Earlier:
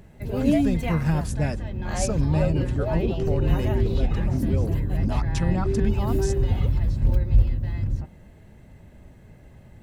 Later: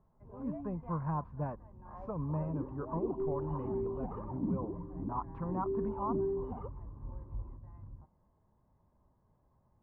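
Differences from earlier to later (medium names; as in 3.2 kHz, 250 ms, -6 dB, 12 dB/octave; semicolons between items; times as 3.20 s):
first sound -11.5 dB; second sound: add bass shelf 400 Hz +9.5 dB; master: add four-pole ladder low-pass 1.1 kHz, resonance 80%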